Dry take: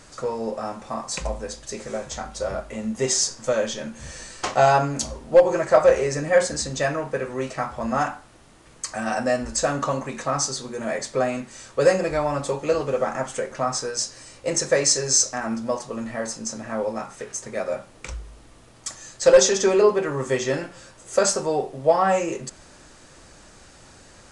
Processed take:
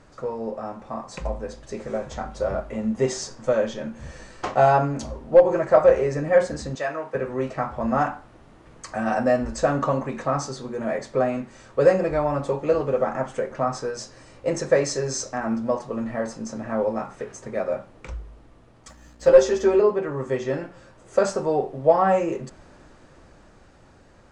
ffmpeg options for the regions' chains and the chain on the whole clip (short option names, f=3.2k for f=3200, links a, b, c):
-filter_complex "[0:a]asettb=1/sr,asplit=3[a][b][c];[a]atrim=end=6.754[d];[b]atrim=start=6.75:end=7.15,asetpts=PTS-STARTPTS,afade=t=in:d=0.004:c=qsin,afade=t=out:st=0.396:d=0.004:c=qsin,highpass=f=820:p=1,asplit=2[e][f];[f]adelay=19,volume=-12dB[g];[e][g]amix=inputs=2:normalize=0,atrim=end_sample=17640[h];[c]atrim=start=7.146[i];[d][h]acrossfade=d=0.004:c1=hsin:c2=qsin[j];[j][i]acrossfade=d=0.004:c1=qsin:c2=hsin,asettb=1/sr,asplit=3[k][l][m];[k]atrim=end=18.884[n];[l]atrim=start=18.88:end=19.8,asetpts=PTS-STARTPTS,afade=t=in:d=0.004:c=qsin,afade=t=out:st=0.916:d=0.004:c=qsin,aeval=exprs='val(0)+0.00708*(sin(2*PI*60*n/s)+sin(2*PI*2*60*n/s)/2+sin(2*PI*3*60*n/s)/3+sin(2*PI*4*60*n/s)/4+sin(2*PI*5*60*n/s)/5)':c=same,aeval=exprs='sgn(val(0))*max(abs(val(0))-0.00562,0)':c=same,asplit=2[o][p];[p]adelay=13,volume=-4dB[q];[o][q]amix=inputs=2:normalize=0,atrim=end_sample=40572[r];[m]atrim=start=19.796[s];[n][r]acrossfade=d=0.004:c1=hsin:c2=qsin[t];[t][s]acrossfade=d=0.004:c1=qsin:c2=hsin,lowpass=f=1.2k:p=1,dynaudnorm=f=180:g=17:m=5dB,volume=-1.5dB"